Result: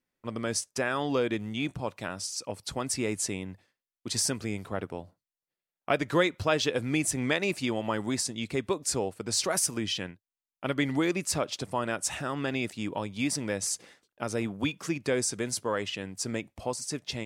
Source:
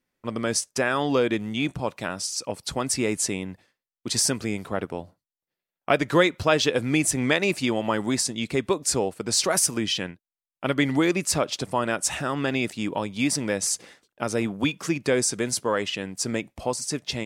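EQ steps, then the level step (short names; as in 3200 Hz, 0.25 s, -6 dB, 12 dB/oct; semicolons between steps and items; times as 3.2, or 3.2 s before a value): dynamic EQ 100 Hz, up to +5 dB, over -52 dBFS, Q 4.3; -5.5 dB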